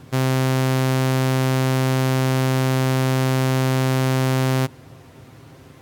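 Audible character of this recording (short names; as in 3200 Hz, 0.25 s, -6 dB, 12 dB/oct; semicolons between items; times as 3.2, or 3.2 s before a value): noise floor -46 dBFS; spectral tilt -6.0 dB/oct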